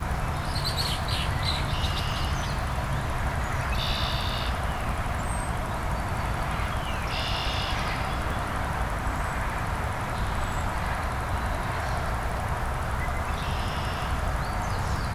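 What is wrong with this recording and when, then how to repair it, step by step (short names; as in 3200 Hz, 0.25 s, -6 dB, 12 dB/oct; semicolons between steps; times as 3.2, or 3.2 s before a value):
crackle 31/s -35 dBFS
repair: de-click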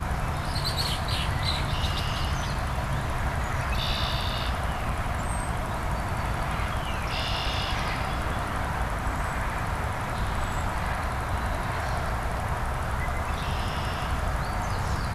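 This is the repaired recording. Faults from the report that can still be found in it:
none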